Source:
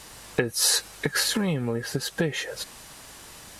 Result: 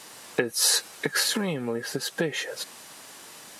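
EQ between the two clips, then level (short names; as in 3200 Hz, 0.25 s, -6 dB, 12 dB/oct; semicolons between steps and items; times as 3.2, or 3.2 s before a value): HPF 210 Hz 12 dB/oct; 0.0 dB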